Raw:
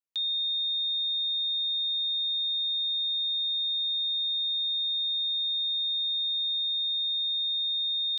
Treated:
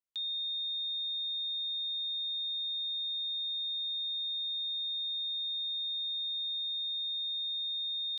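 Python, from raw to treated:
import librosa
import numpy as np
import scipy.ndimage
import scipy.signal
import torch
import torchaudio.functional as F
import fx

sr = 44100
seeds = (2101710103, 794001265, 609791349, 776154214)

y = fx.quant_float(x, sr, bits=6)
y = F.gain(torch.from_numpy(y), -6.5).numpy()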